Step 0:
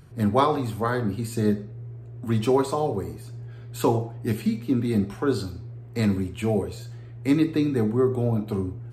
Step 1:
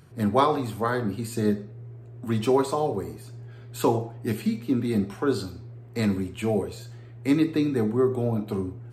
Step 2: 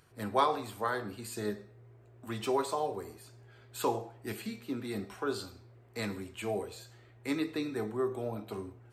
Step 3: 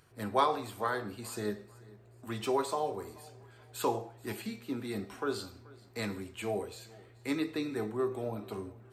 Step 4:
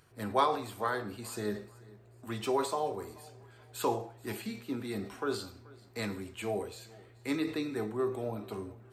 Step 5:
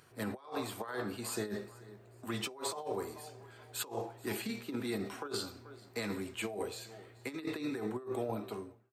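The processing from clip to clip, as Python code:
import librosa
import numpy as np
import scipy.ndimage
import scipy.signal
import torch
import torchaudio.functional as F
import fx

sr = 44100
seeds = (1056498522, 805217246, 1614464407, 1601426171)

y1 = fx.highpass(x, sr, hz=130.0, slope=6)
y2 = fx.peak_eq(y1, sr, hz=150.0, db=-12.5, octaves=2.4)
y2 = fx.comb_fb(y2, sr, f0_hz=110.0, decay_s=0.65, harmonics='odd', damping=0.0, mix_pct=40)
y3 = fx.echo_feedback(y2, sr, ms=432, feedback_pct=35, wet_db=-22.5)
y4 = fx.sustainer(y3, sr, db_per_s=120.0)
y5 = fx.fade_out_tail(y4, sr, length_s=0.6)
y5 = fx.over_compress(y5, sr, threshold_db=-36.0, ratio=-0.5)
y5 = fx.highpass(y5, sr, hz=160.0, slope=6)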